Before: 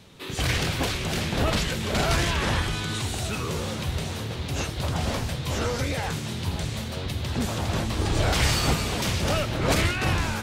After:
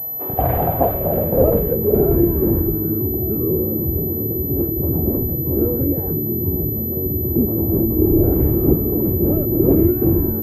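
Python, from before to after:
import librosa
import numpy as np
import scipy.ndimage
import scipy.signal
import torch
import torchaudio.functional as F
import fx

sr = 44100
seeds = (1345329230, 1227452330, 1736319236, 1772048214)

y = fx.filter_sweep_lowpass(x, sr, from_hz=720.0, to_hz=350.0, start_s=0.7, end_s=2.29, q=5.4)
y = fx.pwm(y, sr, carrier_hz=12000.0)
y = y * 10.0 ** (5.5 / 20.0)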